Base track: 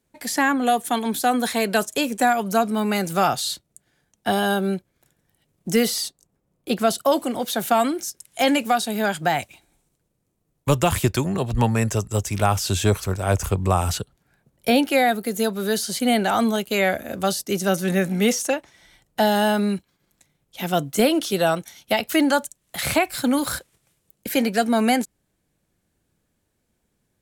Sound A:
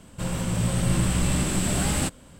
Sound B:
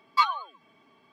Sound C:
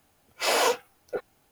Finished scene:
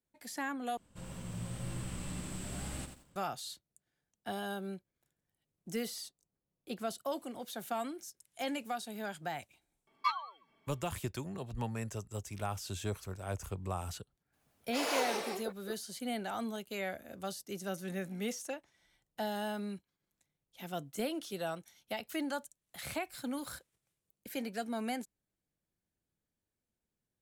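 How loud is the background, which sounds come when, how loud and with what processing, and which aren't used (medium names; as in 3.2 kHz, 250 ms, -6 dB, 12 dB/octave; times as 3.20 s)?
base track -18 dB
0.77 s: replace with A -18 dB + bit-crushed delay 88 ms, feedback 35%, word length 7-bit, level -7.5 dB
9.87 s: add B -10.5 dB
14.32 s: add C -12 dB, fades 0.02 s + ever faster or slower copies 81 ms, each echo -2 st, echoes 2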